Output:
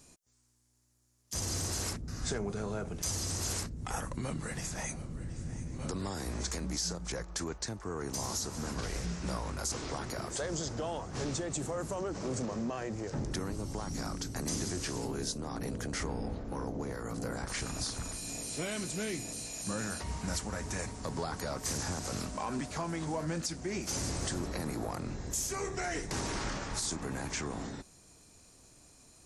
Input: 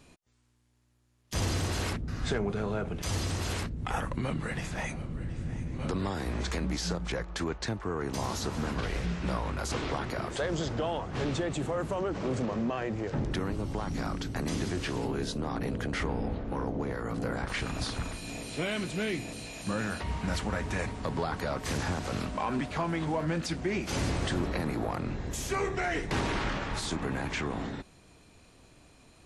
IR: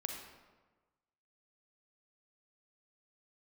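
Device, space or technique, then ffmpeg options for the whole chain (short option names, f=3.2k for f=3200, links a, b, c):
over-bright horn tweeter: -af "highshelf=f=4.4k:t=q:w=1.5:g=10,alimiter=limit=-19dB:level=0:latency=1:release=333,volume=-4.5dB"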